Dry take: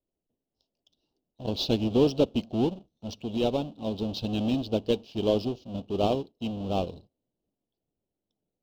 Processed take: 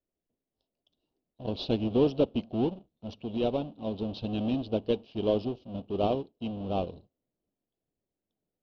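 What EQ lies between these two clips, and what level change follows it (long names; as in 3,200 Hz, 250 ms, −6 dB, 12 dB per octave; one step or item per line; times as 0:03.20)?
high-frequency loss of the air 260 metres
low-shelf EQ 370 Hz −3 dB
notch filter 850 Hz, Q 26
0.0 dB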